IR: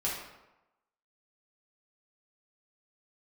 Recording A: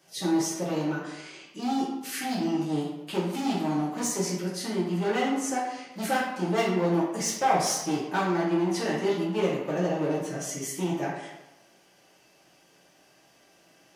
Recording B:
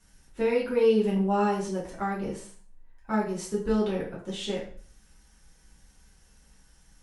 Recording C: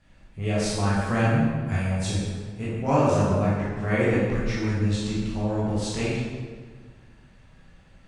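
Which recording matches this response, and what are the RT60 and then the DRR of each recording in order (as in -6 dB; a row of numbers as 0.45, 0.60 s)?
A; 1.0, 0.45, 1.6 s; -6.5, -7.0, -9.0 dB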